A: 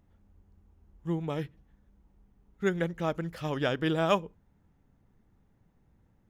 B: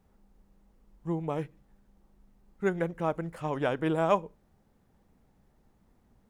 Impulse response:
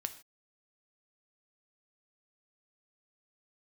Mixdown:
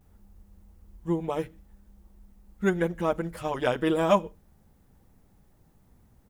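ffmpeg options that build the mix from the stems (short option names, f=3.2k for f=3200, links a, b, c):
-filter_complex "[0:a]lowshelf=f=190:g=9,volume=-6.5dB,asplit=2[a][b];[b]volume=-6.5dB[c];[1:a]highshelf=f=7.4k:g=11.5,volume=-1,adelay=7.9,volume=1.5dB[d];[2:a]atrim=start_sample=2205[e];[c][e]afir=irnorm=-1:irlink=0[f];[a][d][f]amix=inputs=3:normalize=0"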